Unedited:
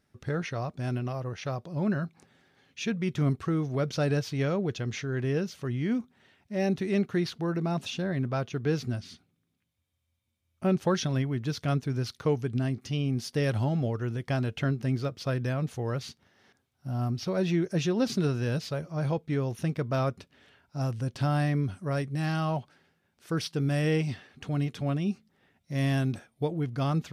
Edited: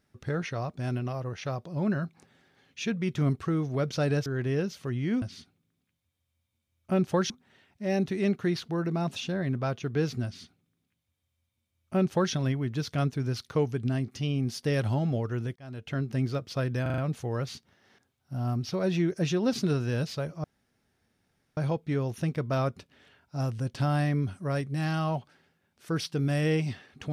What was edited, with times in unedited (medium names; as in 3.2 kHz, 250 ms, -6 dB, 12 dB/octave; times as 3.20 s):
4.26–5.04 s: delete
8.95–11.03 s: copy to 6.00 s
14.26–14.85 s: fade in
15.52 s: stutter 0.04 s, 5 plays
18.98 s: insert room tone 1.13 s